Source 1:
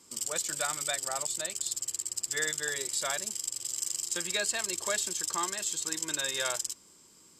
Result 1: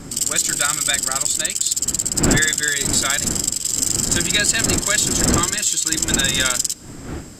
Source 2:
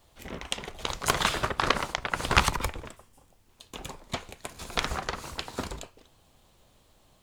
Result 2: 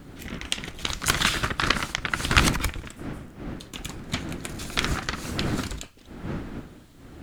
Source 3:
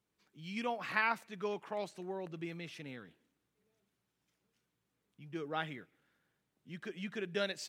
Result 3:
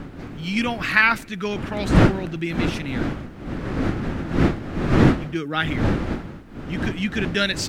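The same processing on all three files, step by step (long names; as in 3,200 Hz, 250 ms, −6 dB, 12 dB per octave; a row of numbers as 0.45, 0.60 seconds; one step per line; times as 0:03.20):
one-sided soft clipper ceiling −8.5 dBFS
wind on the microphone 540 Hz −39 dBFS
flat-topped bell 660 Hz −9 dB
normalise the peak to −1.5 dBFS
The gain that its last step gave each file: +14.0, +5.5, +17.5 decibels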